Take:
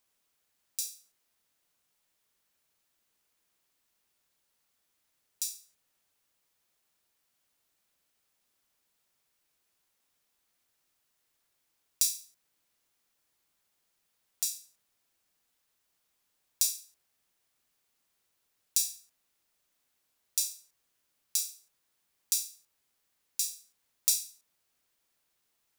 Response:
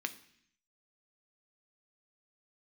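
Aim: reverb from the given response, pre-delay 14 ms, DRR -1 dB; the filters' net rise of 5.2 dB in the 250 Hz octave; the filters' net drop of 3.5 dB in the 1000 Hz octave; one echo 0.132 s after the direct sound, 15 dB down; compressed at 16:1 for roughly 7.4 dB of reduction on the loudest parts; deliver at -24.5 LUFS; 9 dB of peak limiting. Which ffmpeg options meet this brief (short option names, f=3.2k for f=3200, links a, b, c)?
-filter_complex "[0:a]equalizer=f=250:t=o:g=7,equalizer=f=1k:t=o:g=-5,acompressor=threshold=-29dB:ratio=16,alimiter=limit=-15dB:level=0:latency=1,aecho=1:1:132:0.178,asplit=2[a][b];[1:a]atrim=start_sample=2205,adelay=14[c];[b][c]afir=irnorm=-1:irlink=0,volume=-1dB[d];[a][d]amix=inputs=2:normalize=0,volume=14.5dB"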